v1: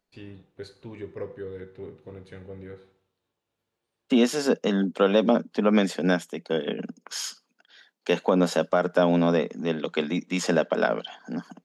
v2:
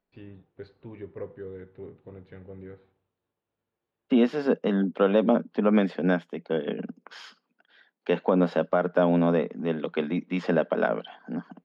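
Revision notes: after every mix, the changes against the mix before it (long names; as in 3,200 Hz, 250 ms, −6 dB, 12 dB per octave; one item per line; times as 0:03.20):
first voice: send −8.5 dB
master: add high-frequency loss of the air 360 metres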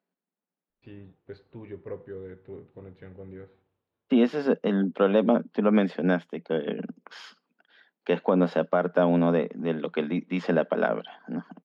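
first voice: entry +0.70 s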